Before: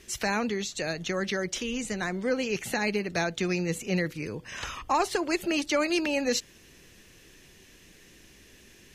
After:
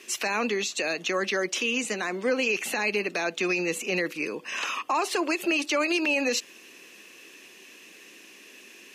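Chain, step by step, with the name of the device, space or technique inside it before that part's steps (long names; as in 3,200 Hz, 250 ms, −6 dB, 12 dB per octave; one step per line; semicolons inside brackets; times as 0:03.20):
laptop speaker (high-pass filter 250 Hz 24 dB per octave; parametric band 1,100 Hz +6 dB 0.22 octaves; parametric band 2,600 Hz +10 dB 0.22 octaves; brickwall limiter −21 dBFS, peak gain reduction 9.5 dB)
level +4 dB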